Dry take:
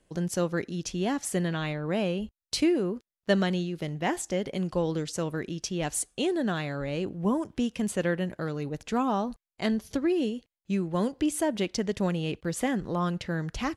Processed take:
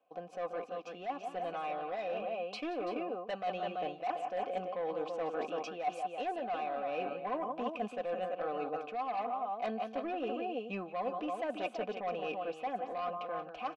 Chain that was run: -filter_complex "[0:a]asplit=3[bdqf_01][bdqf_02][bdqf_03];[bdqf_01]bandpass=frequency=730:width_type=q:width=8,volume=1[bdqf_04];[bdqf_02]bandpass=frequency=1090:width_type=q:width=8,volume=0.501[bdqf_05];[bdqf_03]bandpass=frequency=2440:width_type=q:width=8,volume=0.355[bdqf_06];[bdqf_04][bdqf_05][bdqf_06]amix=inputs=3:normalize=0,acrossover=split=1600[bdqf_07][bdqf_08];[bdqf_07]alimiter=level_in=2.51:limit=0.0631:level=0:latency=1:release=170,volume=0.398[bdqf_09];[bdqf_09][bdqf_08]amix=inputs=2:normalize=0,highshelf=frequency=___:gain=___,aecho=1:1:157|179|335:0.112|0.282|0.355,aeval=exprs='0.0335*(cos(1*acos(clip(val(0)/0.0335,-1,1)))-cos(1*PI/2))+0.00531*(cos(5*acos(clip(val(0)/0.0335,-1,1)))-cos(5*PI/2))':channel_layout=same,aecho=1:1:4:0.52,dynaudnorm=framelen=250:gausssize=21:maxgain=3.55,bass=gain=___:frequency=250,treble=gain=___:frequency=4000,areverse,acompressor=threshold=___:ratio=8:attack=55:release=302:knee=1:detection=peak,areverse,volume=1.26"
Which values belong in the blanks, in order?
4700, -12, -7, -3, 0.0126